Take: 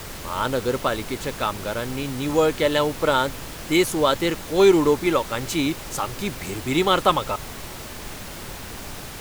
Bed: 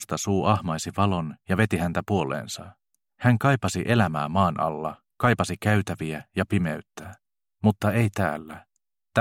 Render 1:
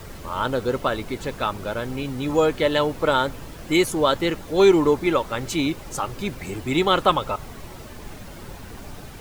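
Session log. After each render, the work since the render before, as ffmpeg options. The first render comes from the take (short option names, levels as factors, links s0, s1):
-af "afftdn=nr=9:nf=-36"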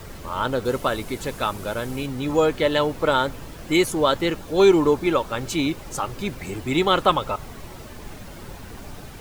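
-filter_complex "[0:a]asettb=1/sr,asplit=3[s0][s1][s2];[s0]atrim=end=0.654[s3];[s1]atrim=start=0.65:end=2.06,asetpts=PTS-STARTPTS,afade=t=in:d=0.004:c=qsin,afade=t=out:st=1.406:d=0.004:c=qsin,equalizer=f=11000:w=0.61:g=7.5[s4];[s2]atrim=start=2.056[s5];[s3][s4]acrossfade=d=0.004:c1=hsin:c2=qsin[s6];[s6][s5]acrossfade=d=0.004:c1=qsin:c2=hsin,asettb=1/sr,asplit=3[s7][s8][s9];[s7]atrim=end=4.314[s10];[s8]atrim=start=4.31:end=5.55,asetpts=PTS-STARTPTS,afade=t=in:d=0.004:c=qsin,afade=t=out:st=1.236:d=0.004:c=qsin,bandreject=f=2000:w=12[s11];[s9]atrim=start=5.546[s12];[s10][s11]acrossfade=d=0.004:c1=hsin:c2=qsin[s13];[s13][s12]acrossfade=d=0.004:c1=qsin:c2=hsin"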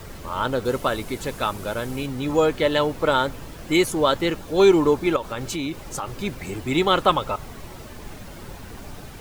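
-filter_complex "[0:a]asettb=1/sr,asplit=3[s0][s1][s2];[s0]atrim=end=5.164[s3];[s1]atrim=start=5.16:end=6.1,asetpts=PTS-STARTPTS,afade=t=in:d=0.004:c=qsin,afade=t=out:st=0.936:d=0.004:c=qsin,acompressor=threshold=0.0631:ratio=4:attack=3.2:release=140:knee=1:detection=peak[s4];[s2]atrim=start=6.096[s5];[s3][s4]acrossfade=d=0.004:c1=hsin:c2=qsin[s6];[s6][s5]acrossfade=d=0.004:c1=qsin:c2=hsin"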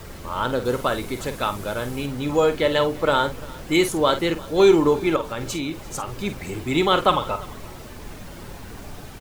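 -filter_complex "[0:a]asplit=2[s0][s1];[s1]adelay=49,volume=0.299[s2];[s0][s2]amix=inputs=2:normalize=0,aecho=1:1:345:0.0794"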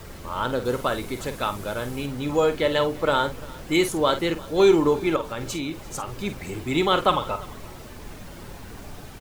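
-af "volume=0.794"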